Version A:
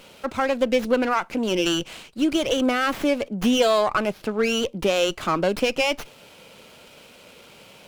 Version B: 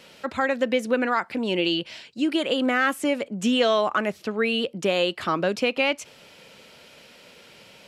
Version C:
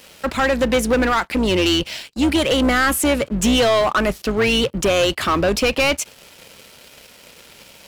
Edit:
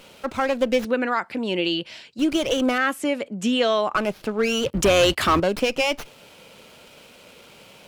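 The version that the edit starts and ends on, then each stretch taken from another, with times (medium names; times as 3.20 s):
A
0.85–2.19 s: from B
2.78–3.95 s: from B
4.66–5.40 s: from C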